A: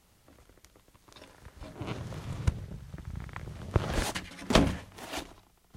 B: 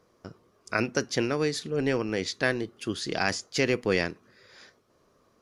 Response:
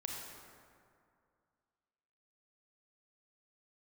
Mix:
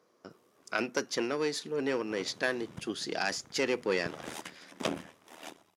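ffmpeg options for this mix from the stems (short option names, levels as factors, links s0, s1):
-filter_complex "[0:a]bandreject=f=4300:w=9.3,tremolo=f=79:d=0.824,adelay=300,volume=0.596[s0];[1:a]aeval=exprs='(tanh(4.47*val(0)+0.6)-tanh(0.6))/4.47':c=same,volume=1[s1];[s0][s1]amix=inputs=2:normalize=0,highpass=230"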